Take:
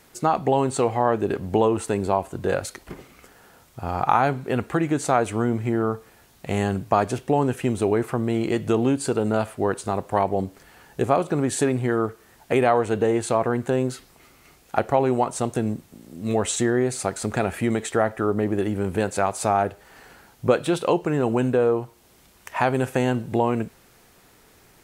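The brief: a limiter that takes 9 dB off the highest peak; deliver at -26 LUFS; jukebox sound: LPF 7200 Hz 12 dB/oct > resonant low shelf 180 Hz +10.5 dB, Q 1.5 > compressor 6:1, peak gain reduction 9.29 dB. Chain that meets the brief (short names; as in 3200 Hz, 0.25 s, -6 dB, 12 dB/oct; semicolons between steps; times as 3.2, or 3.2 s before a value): limiter -12.5 dBFS; LPF 7200 Hz 12 dB/oct; resonant low shelf 180 Hz +10.5 dB, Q 1.5; compressor 6:1, threshold -22 dBFS; gain +1.5 dB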